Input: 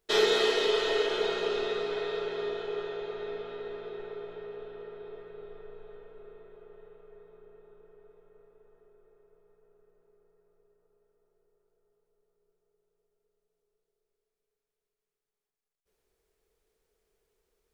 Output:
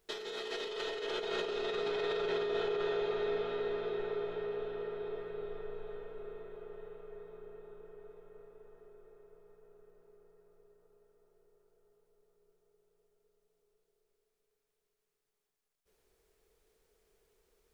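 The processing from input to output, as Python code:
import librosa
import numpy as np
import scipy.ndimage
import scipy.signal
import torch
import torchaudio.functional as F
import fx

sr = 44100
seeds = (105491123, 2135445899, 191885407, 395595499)

y = fx.over_compress(x, sr, threshold_db=-35.0, ratio=-1.0)
y = 10.0 ** (-24.0 / 20.0) * np.tanh(y / 10.0 ** (-24.0 / 20.0))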